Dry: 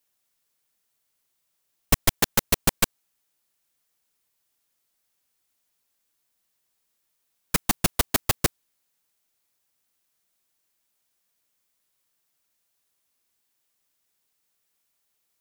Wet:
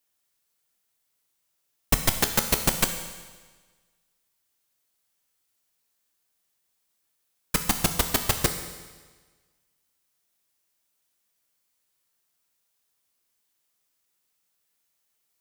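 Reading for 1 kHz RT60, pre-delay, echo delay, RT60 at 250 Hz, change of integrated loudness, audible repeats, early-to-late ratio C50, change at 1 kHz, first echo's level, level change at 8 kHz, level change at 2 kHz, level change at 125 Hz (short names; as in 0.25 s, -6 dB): 1.4 s, 12 ms, none, 1.4 s, -0.5 dB, none, 8.5 dB, -0.5 dB, none, 0.0 dB, -0.5 dB, -1.0 dB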